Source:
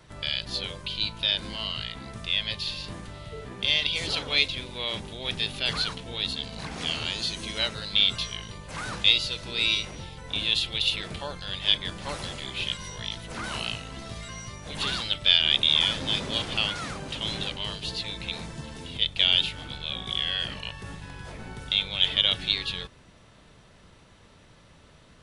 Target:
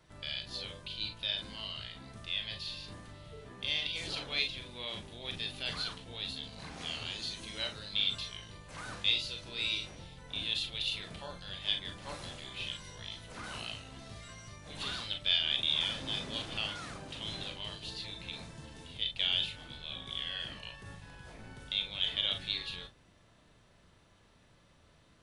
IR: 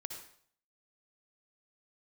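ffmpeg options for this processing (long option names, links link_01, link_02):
-filter_complex "[1:a]atrim=start_sample=2205,atrim=end_sample=4410,asetrate=83790,aresample=44100[link_01];[0:a][link_01]afir=irnorm=-1:irlink=0,volume=-1dB"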